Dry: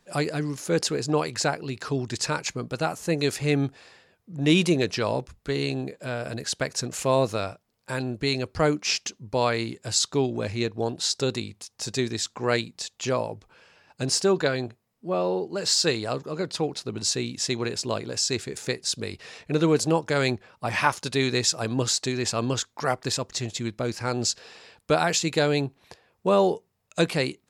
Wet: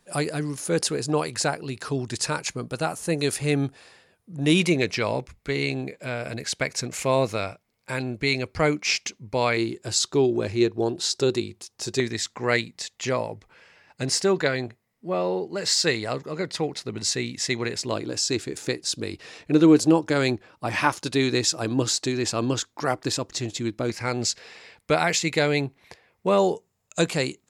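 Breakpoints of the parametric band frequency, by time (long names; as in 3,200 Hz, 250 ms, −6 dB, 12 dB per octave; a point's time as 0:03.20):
parametric band +10.5 dB 0.29 octaves
9,600 Hz
from 0:04.60 2,200 Hz
from 0:09.57 360 Hz
from 0:12.00 2,000 Hz
from 0:17.92 310 Hz
from 0:23.90 2,100 Hz
from 0:26.38 7,100 Hz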